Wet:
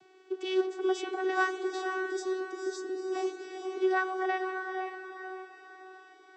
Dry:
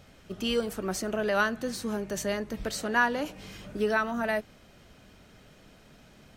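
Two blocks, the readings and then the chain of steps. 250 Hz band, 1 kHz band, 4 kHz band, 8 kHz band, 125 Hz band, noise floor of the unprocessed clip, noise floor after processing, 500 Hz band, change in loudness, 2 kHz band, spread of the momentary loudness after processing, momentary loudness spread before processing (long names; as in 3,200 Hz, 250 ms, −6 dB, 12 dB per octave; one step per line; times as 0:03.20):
−2.5 dB, −1.0 dB, −6.0 dB, −10.0 dB, below −35 dB, −56 dBFS, −57 dBFS, 0.0 dB, −3.0 dB, −3.5 dB, 14 LU, 9 LU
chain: time-frequency box erased 0:01.84–0:03.12, 530–4,500 Hz
channel vocoder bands 16, saw 375 Hz
feedback delay with all-pass diffusion 495 ms, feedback 44%, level −5 dB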